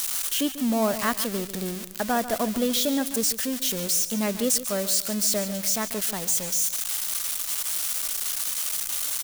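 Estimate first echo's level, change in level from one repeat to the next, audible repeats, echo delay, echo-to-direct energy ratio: -13.0 dB, -9.0 dB, 2, 143 ms, -12.5 dB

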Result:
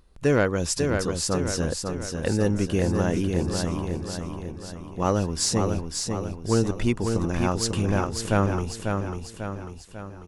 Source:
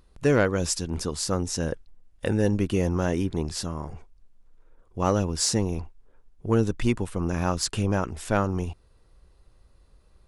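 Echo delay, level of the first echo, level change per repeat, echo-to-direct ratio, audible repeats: 545 ms, -5.0 dB, -5.5 dB, -3.5 dB, 5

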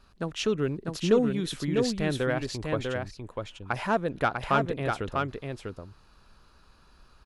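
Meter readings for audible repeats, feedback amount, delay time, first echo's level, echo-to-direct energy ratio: 1, no regular repeats, 647 ms, -4.0 dB, -4.0 dB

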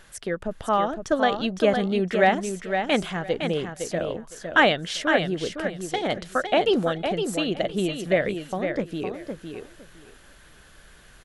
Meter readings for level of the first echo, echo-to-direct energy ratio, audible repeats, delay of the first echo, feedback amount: -6.5 dB, -6.5 dB, 2, 510 ms, 18%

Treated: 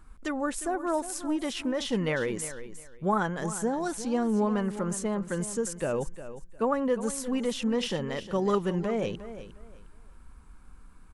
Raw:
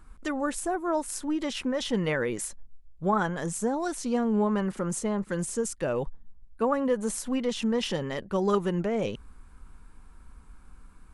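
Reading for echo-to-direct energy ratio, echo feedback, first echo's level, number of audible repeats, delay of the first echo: -13.0 dB, 23%, -13.0 dB, 2, 356 ms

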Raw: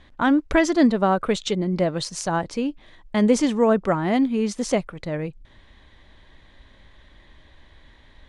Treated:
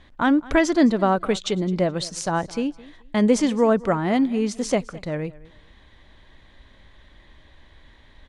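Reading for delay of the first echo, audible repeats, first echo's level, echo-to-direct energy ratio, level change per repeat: 213 ms, 2, -21.0 dB, -21.0 dB, -13.0 dB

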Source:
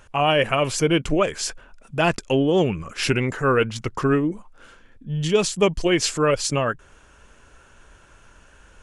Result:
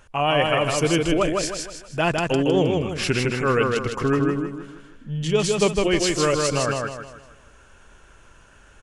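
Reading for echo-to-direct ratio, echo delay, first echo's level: -2.0 dB, 157 ms, -3.0 dB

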